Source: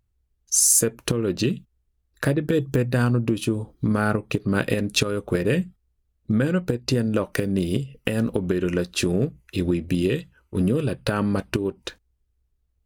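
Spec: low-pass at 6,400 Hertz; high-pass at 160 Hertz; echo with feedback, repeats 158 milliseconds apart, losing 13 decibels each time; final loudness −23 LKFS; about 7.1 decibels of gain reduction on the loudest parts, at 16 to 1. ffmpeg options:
ffmpeg -i in.wav -af "highpass=160,lowpass=6400,acompressor=threshold=-25dB:ratio=16,aecho=1:1:158|316|474:0.224|0.0493|0.0108,volume=8.5dB" out.wav

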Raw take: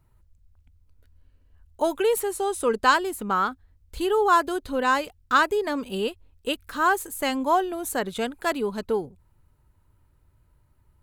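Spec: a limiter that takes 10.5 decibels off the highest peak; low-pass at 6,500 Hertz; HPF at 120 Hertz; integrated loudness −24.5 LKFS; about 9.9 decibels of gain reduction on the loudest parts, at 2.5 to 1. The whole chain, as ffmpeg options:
ffmpeg -i in.wav -af "highpass=120,lowpass=6500,acompressor=threshold=-29dB:ratio=2.5,volume=11.5dB,alimiter=limit=-15.5dB:level=0:latency=1" out.wav

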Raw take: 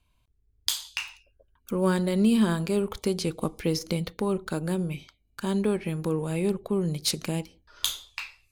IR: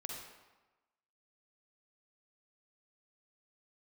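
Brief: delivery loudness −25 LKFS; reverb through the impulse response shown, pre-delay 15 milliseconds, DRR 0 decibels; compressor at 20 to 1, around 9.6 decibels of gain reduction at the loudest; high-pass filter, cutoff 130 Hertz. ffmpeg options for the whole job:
-filter_complex "[0:a]highpass=130,acompressor=threshold=-27dB:ratio=20,asplit=2[link_01][link_02];[1:a]atrim=start_sample=2205,adelay=15[link_03];[link_02][link_03]afir=irnorm=-1:irlink=0,volume=1dB[link_04];[link_01][link_04]amix=inputs=2:normalize=0,volume=6dB"

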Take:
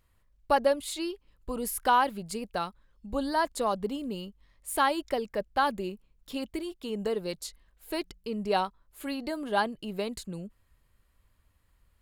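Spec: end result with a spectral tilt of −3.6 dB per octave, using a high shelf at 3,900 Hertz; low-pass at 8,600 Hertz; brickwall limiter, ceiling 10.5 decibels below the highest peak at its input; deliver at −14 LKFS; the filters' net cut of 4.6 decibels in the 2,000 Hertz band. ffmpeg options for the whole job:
ffmpeg -i in.wav -af "lowpass=8600,equalizer=frequency=2000:width_type=o:gain=-8.5,highshelf=frequency=3900:gain=8.5,volume=21dB,alimiter=limit=-1.5dB:level=0:latency=1" out.wav

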